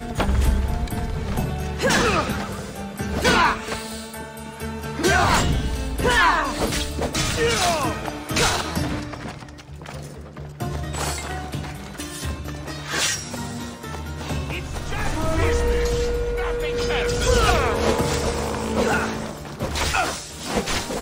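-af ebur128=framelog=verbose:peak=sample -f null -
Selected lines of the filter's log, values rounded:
Integrated loudness:
  I:         -23.1 LUFS
  Threshold: -33.4 LUFS
Loudness range:
  LRA:         7.0 LU
  Threshold: -43.4 LUFS
  LRA low:   -28.0 LUFS
  LRA high:  -21.1 LUFS
Sample peak:
  Peak:       -4.1 dBFS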